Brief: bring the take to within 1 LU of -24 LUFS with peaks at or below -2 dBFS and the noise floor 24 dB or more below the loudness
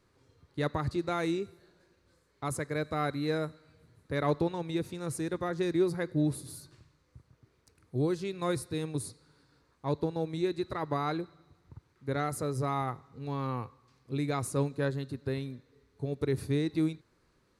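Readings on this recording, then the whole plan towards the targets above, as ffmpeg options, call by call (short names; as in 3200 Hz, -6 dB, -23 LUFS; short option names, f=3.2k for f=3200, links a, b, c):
loudness -33.0 LUFS; peak -16.5 dBFS; loudness target -24.0 LUFS
-> -af "volume=9dB"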